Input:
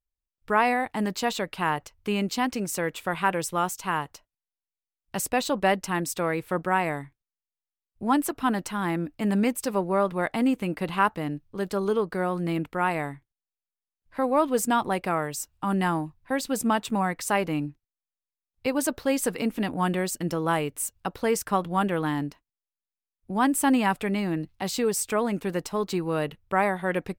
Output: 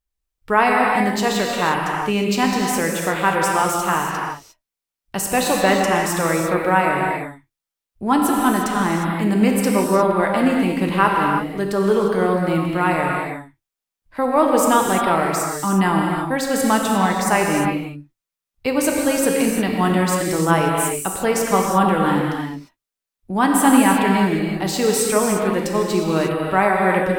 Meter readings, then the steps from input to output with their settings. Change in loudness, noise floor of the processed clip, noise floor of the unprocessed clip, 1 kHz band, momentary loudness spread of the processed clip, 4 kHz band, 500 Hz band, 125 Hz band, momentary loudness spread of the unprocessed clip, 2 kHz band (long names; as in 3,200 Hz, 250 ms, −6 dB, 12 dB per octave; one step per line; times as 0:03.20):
+8.5 dB, below −85 dBFS, below −85 dBFS, +8.5 dB, 7 LU, +8.5 dB, +8.5 dB, +8.5 dB, 7 LU, +8.5 dB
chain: reverb whose tail is shaped and stops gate 380 ms flat, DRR −1 dB
level +5 dB